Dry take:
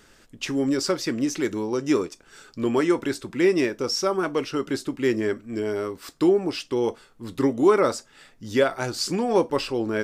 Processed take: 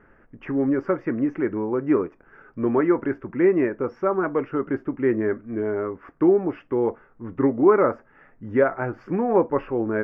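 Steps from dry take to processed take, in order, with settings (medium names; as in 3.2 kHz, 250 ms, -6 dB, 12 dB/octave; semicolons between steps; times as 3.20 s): inverse Chebyshev low-pass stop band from 3.7 kHz, stop band 40 dB; trim +1.5 dB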